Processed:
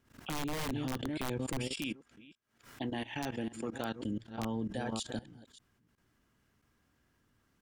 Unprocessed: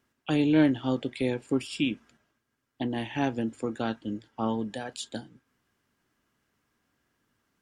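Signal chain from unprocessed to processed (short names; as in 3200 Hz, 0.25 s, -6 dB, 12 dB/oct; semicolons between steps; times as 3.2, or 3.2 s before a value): reverse delay 0.294 s, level -11 dB; 1.67–3.96 low shelf 360 Hz -10.5 dB; wrapped overs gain 18 dB; level quantiser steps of 19 dB; low shelf 140 Hz +10.5 dB; backwards sustainer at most 140 dB/s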